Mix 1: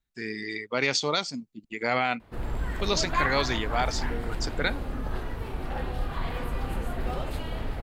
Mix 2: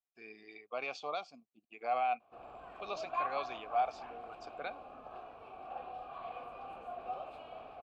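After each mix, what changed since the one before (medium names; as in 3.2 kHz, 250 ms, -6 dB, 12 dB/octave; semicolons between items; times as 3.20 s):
master: add vowel filter a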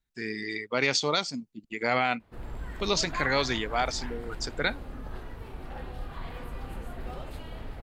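background -7.5 dB; master: remove vowel filter a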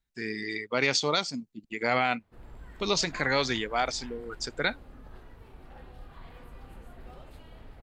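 background -9.0 dB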